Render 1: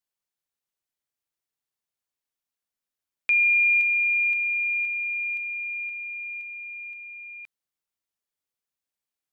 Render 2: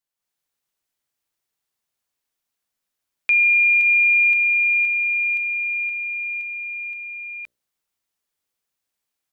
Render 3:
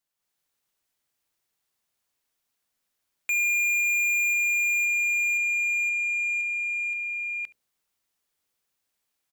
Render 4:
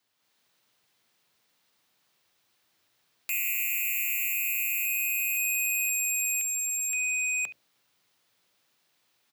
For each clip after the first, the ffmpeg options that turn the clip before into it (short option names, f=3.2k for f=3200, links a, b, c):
-af "bandreject=f=60:t=h:w=6,bandreject=f=120:t=h:w=6,bandreject=f=180:t=h:w=6,bandreject=f=240:t=h:w=6,bandreject=f=300:t=h:w=6,bandreject=f=360:t=h:w=6,bandreject=f=420:t=h:w=6,bandreject=f=480:t=h:w=6,bandreject=f=540:t=h:w=6,bandreject=f=600:t=h:w=6,dynaudnorm=f=150:g=3:m=7.5dB,alimiter=limit=-12.5dB:level=0:latency=1:release=82"
-af "asoftclip=type=tanh:threshold=-25.5dB,aecho=1:1:71:0.0841,volume=2dB"
-af "afreqshift=91,equalizer=f=4k:t=o:w=1:g=3,equalizer=f=8k:t=o:w=1:g=-4,equalizer=f=16k:t=o:w=1:g=-7,aeval=exprs='0.106*sin(PI/2*4.47*val(0)/0.106)':c=same,volume=-6dB"